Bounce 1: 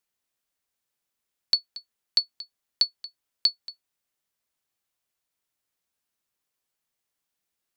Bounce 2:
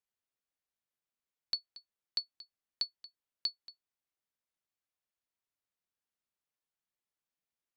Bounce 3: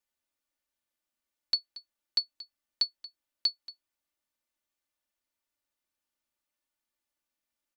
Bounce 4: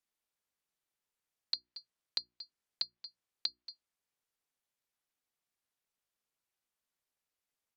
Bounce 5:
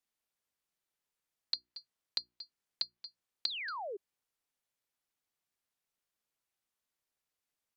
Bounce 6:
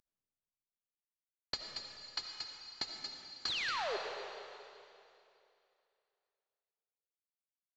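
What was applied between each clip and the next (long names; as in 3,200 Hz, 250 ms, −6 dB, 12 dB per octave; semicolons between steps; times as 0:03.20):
high-shelf EQ 4,900 Hz −7.5 dB; level −9 dB
comb filter 3.4 ms; level +3 dB
ring modulation 220 Hz; mains-hum notches 60/120/180/240/300/360 Hz; treble cut that deepens with the level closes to 2,200 Hz, closed at −32 dBFS; level +1 dB
sound drawn into the spectrogram fall, 0:03.47–0:03.97, 370–4,600 Hz −40 dBFS
variable-slope delta modulation 32 kbit/s; comb and all-pass reverb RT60 2.7 s, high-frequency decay 1×, pre-delay 35 ms, DRR 2.5 dB; level +2 dB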